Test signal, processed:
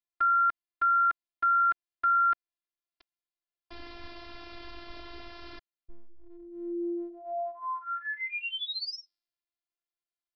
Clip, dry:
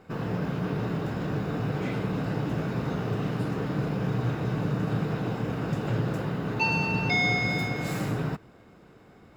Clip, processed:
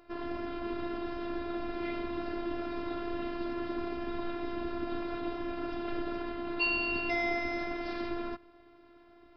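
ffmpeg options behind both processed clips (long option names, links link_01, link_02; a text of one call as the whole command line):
ffmpeg -i in.wav -af "afftfilt=real='hypot(re,im)*cos(PI*b)':imag='0':win_size=512:overlap=0.75,aresample=11025,aresample=44100" out.wav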